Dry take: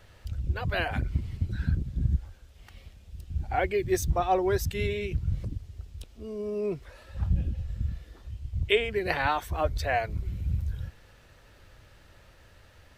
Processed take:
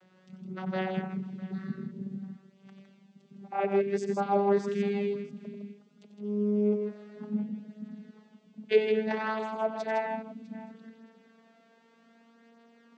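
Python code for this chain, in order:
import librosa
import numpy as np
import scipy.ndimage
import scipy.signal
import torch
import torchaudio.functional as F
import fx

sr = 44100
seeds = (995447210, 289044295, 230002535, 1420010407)

p1 = fx.vocoder_glide(x, sr, note=54, semitones=4)
y = p1 + fx.echo_multitap(p1, sr, ms=(91, 160, 653), db=(-10.0, -6.5, -19.5), dry=0)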